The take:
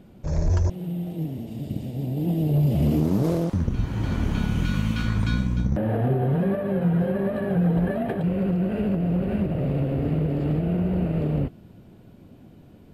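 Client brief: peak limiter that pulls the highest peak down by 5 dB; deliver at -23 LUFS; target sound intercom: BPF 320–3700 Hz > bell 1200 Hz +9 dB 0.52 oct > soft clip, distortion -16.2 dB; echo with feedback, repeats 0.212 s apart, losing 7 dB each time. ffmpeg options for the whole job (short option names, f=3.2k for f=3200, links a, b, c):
-af "alimiter=limit=-18dB:level=0:latency=1,highpass=320,lowpass=3.7k,equalizer=f=1.2k:t=o:w=0.52:g=9,aecho=1:1:212|424|636|848|1060:0.447|0.201|0.0905|0.0407|0.0183,asoftclip=threshold=-25dB,volume=10.5dB"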